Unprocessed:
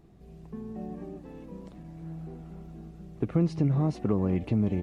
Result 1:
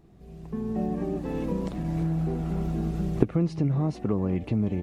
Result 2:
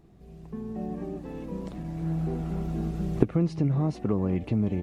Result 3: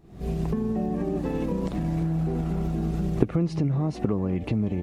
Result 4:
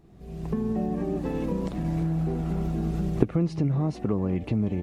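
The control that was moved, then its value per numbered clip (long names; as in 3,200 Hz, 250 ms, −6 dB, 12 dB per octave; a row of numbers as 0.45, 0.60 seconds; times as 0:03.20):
camcorder AGC, rising by: 13, 5.1, 81, 32 dB per second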